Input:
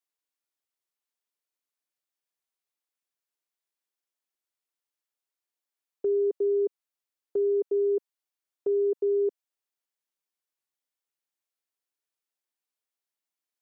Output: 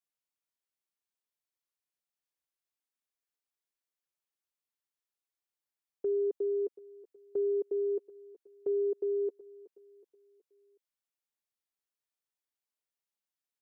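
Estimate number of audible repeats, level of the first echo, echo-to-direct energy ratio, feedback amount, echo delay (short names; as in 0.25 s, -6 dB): 3, -17.0 dB, -16.0 dB, 45%, 0.371 s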